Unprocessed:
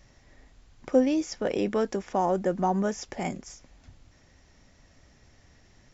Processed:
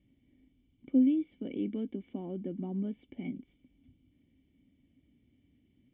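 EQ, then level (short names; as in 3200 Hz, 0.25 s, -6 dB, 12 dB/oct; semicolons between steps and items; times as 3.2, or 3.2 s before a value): vocal tract filter i; HPF 56 Hz; notch 2500 Hz, Q 9.9; +1.5 dB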